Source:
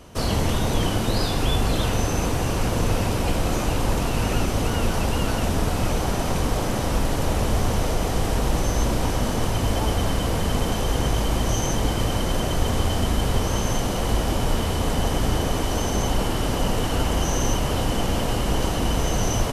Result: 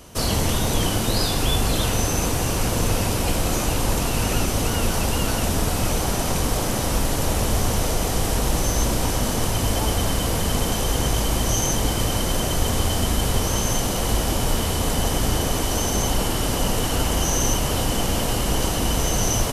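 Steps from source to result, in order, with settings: high shelf 4800 Hz +10 dB

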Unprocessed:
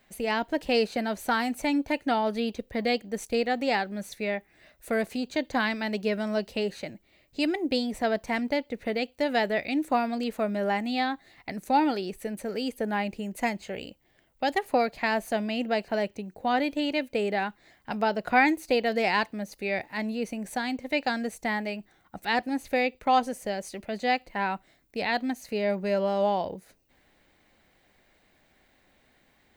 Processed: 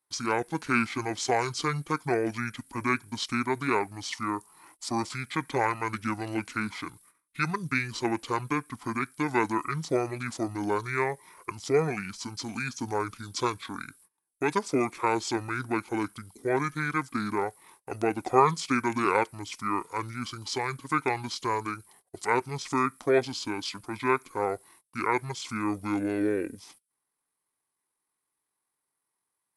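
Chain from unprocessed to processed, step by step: gate -58 dBFS, range -25 dB; pitch shift -11.5 st; RIAA curve recording; gain +3 dB

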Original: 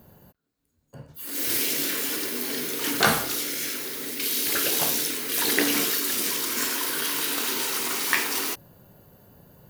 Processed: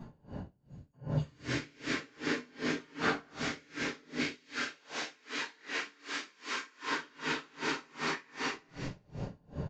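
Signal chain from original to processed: dynamic EQ 1700 Hz, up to +6 dB, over -43 dBFS, Q 1; compressor 10:1, threshold -38 dBFS, peak gain reduction 26 dB; high shelf 2700 Hz -10 dB; thin delay 0.323 s, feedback 36%, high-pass 3100 Hz, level -8.5 dB; downsampling 16000 Hz; 4.16–6.8 HPF 910 Hz 6 dB/oct; reverb RT60 1.3 s, pre-delay 5 ms, DRR -12 dB; dB-linear tremolo 2.6 Hz, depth 31 dB

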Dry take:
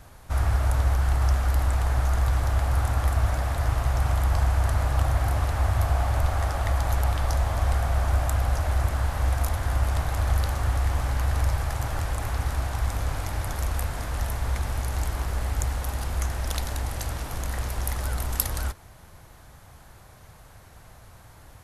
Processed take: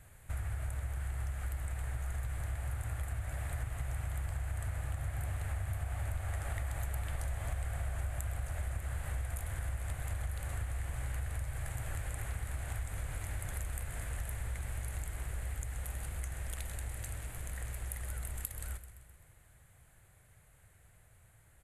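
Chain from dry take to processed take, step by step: Doppler pass-by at 7.34, 5 m/s, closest 5.4 m; graphic EQ 125/250/1000/2000/4000/8000 Hz +4/-6/-8/+6/-3/+11 dB; on a send: feedback echo 0.129 s, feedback 57%, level -15.5 dB; on the sum: compressor 12:1, threshold -41 dBFS, peak gain reduction 23 dB; bell 5500 Hz -15 dB 0.59 oct; gain +7.5 dB

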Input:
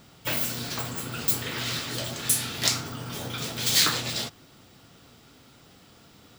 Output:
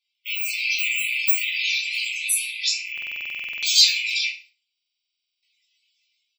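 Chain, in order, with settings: rattling part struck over -47 dBFS, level -18 dBFS; elliptic high-pass 2200 Hz, stop band 80 dB; gate -54 dBFS, range -11 dB; reverb removal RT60 0.94 s; AGC gain up to 11 dB; loudest bins only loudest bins 64; doubler 17 ms -6 dB; FDN reverb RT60 0.39 s, high-frequency decay 0.9×, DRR -1 dB; stuck buffer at 2.93/4.73, samples 2048, times 14; mismatched tape noise reduction decoder only; gain -2.5 dB

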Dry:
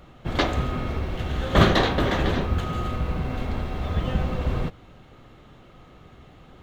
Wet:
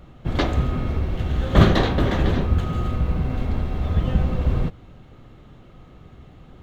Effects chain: low shelf 340 Hz +8 dB; gain -2.5 dB

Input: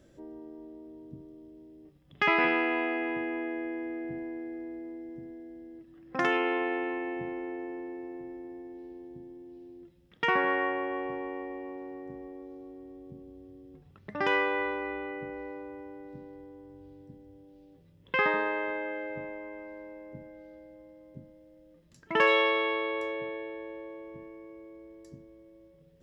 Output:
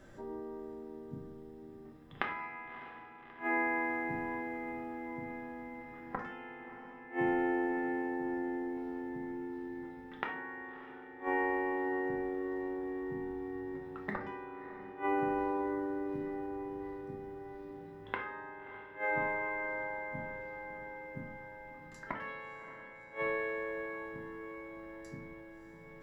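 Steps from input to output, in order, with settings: band shelf 1200 Hz +9 dB; short-mantissa float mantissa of 6-bit; flipped gate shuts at -22 dBFS, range -28 dB; diffused feedback echo 0.624 s, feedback 72%, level -13 dB; on a send at -1.5 dB: reverb RT60 0.50 s, pre-delay 3 ms

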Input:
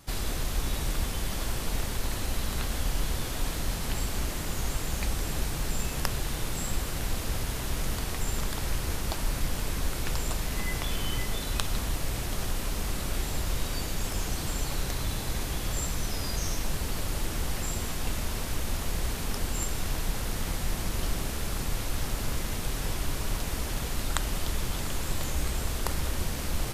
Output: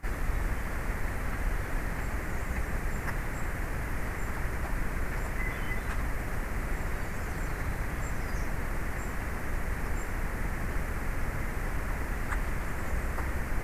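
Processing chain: crackle 490/s -50 dBFS; plain phase-vocoder stretch 0.51×; resonant high shelf 2600 Hz -10 dB, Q 3; gain +1.5 dB

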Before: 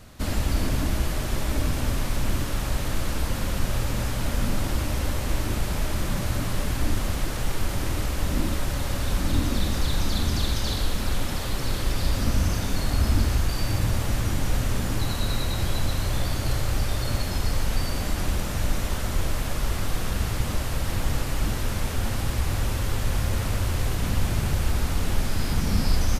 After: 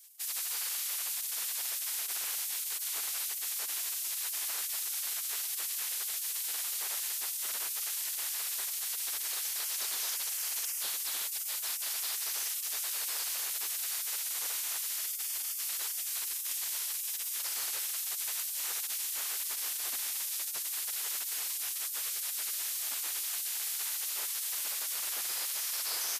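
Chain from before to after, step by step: 14.93–17.27 low shelf 130 Hz -2.5 dB; spectral gate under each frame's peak -30 dB weak; RIAA curve recording; notches 60/120/180/240 Hz; gain -7.5 dB

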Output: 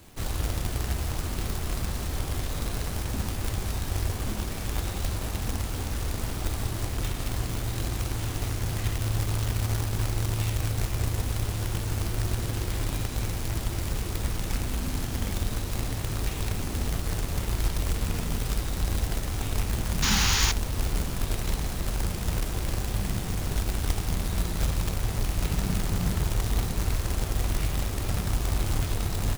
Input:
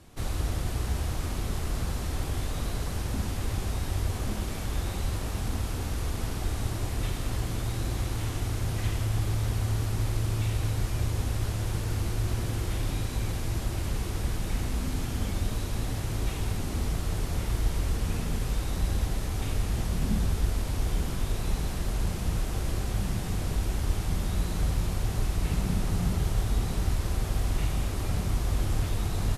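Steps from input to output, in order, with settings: painted sound noise, 20.02–20.52, 770–7100 Hz -26 dBFS; companded quantiser 4-bit

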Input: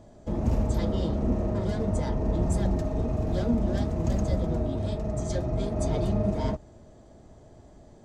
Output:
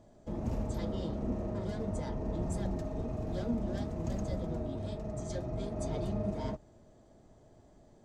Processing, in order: bell 63 Hz -5 dB 0.96 oct; gain -7.5 dB

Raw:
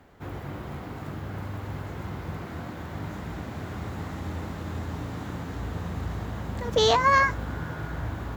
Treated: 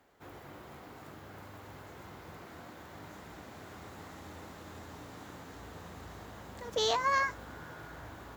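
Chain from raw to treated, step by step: tone controls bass -10 dB, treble +5 dB; gain -9 dB

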